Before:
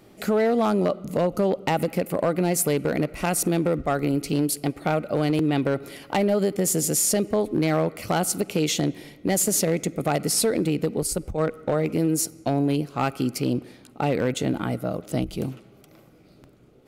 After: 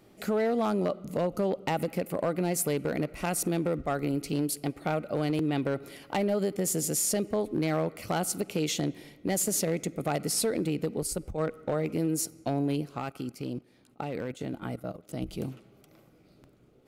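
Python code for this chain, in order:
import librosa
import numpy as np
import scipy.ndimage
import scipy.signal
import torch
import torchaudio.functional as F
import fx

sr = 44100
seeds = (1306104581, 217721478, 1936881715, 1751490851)

y = fx.level_steps(x, sr, step_db=14, at=(12.98, 15.22))
y = y * 10.0 ** (-6.0 / 20.0)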